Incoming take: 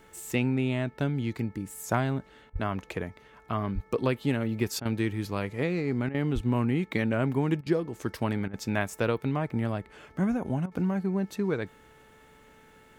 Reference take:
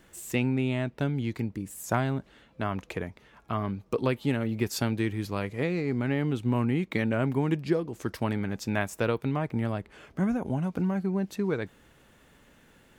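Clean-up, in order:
hum removal 437.6 Hz, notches 5
high-pass at the plosives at 0:02.52/0:03.74/0:06.34
repair the gap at 0:02.50/0:04.80/0:06.09/0:07.61/0:08.48/0:10.66, 53 ms

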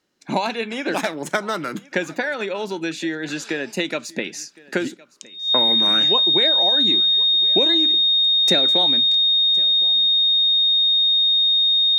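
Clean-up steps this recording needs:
notch filter 3,700 Hz, Q 30
echo removal 1,063 ms −22.5 dB

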